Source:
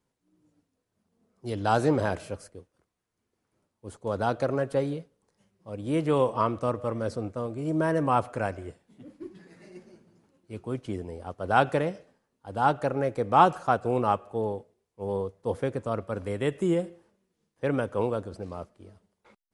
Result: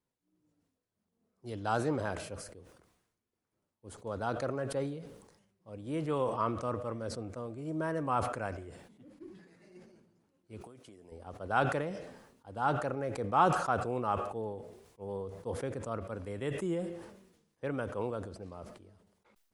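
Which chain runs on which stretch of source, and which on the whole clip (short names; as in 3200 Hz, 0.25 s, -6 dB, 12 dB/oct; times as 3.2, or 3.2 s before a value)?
10.61–11.12 HPF 270 Hz 6 dB/oct + high shelf 7700 Hz +11.5 dB + compressor 12:1, threshold -41 dBFS
whole clip: dynamic EQ 1300 Hz, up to +4 dB, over -38 dBFS; sustainer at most 61 dB/s; gain -9 dB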